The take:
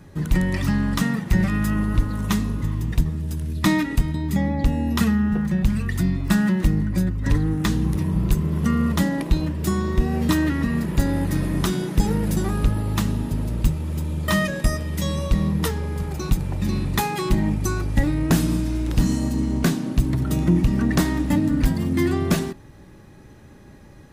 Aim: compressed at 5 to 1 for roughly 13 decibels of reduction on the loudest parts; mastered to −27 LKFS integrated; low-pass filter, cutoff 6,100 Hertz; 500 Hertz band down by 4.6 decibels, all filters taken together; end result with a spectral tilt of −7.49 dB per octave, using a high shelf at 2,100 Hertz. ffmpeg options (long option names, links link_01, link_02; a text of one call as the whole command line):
ffmpeg -i in.wav -af "lowpass=6100,equalizer=frequency=500:width_type=o:gain=-6.5,highshelf=frequency=2100:gain=-8,acompressor=threshold=-28dB:ratio=5,volume=5dB" out.wav